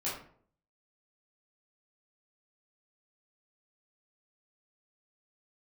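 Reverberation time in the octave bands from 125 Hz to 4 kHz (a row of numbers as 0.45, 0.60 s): 0.70, 0.65, 0.60, 0.50, 0.45, 0.30 s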